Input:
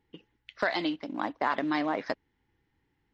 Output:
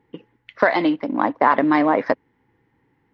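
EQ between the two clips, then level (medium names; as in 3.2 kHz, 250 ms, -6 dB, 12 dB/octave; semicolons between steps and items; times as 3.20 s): graphic EQ 125/250/500/1000/2000 Hz +12/+10/+12/+11/+9 dB; -2.0 dB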